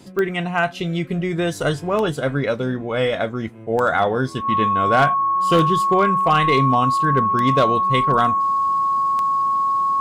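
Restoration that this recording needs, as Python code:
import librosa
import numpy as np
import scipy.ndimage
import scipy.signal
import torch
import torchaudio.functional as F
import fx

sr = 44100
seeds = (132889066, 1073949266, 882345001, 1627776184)

y = fx.fix_declip(x, sr, threshold_db=-8.0)
y = fx.fix_declick_ar(y, sr, threshold=10.0)
y = fx.notch(y, sr, hz=1100.0, q=30.0)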